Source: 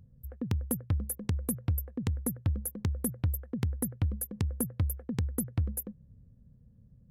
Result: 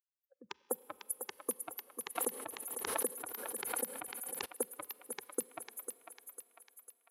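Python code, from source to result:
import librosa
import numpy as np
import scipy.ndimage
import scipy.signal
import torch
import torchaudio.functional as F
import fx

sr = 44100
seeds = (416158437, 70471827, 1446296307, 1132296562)

y = fx.bin_expand(x, sr, power=3.0)
y = scipy.signal.sosfilt(scipy.signal.butter(4, 460.0, 'highpass', fs=sr, output='sos'), y)
y = fx.peak_eq(y, sr, hz=14000.0, db=-8.0, octaves=1.2)
y = fx.level_steps(y, sr, step_db=11)
y = fx.echo_thinned(y, sr, ms=499, feedback_pct=53, hz=700.0, wet_db=-5.5)
y = fx.rev_schroeder(y, sr, rt60_s=3.4, comb_ms=30, drr_db=19.5)
y = fx.pre_swell(y, sr, db_per_s=35.0, at=(2.15, 4.44), fade=0.02)
y = y * librosa.db_to_amplitude(12.0)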